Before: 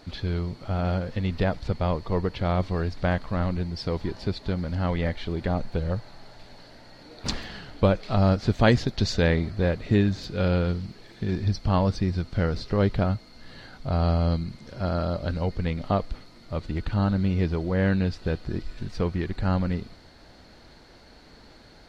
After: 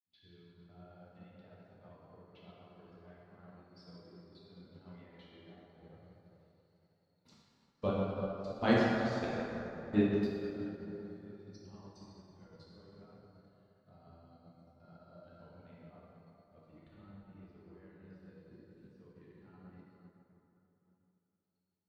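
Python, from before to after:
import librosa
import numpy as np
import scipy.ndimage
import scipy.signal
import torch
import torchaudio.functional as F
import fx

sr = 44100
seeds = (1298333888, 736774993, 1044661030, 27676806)

y = fx.bin_expand(x, sr, power=1.5)
y = scipy.signal.sosfilt(scipy.signal.butter(2, 170.0, 'highpass', fs=sr, output='sos'), y)
y = fx.level_steps(y, sr, step_db=23)
y = fx.rev_plate(y, sr, seeds[0], rt60_s=4.9, hf_ratio=0.4, predelay_ms=0, drr_db=-8.5)
y = fx.upward_expand(y, sr, threshold_db=-57.0, expansion=1.5)
y = y * 10.0 ** (-7.0 / 20.0)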